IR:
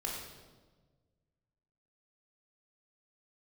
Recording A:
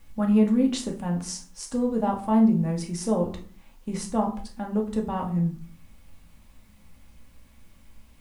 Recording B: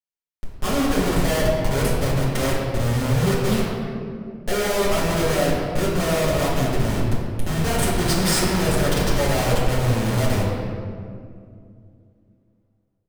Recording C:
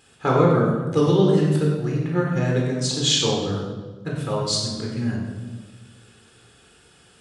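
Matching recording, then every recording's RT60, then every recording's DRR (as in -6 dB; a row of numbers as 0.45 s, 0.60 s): C; 0.45 s, 2.3 s, 1.4 s; 0.5 dB, -7.0 dB, -2.5 dB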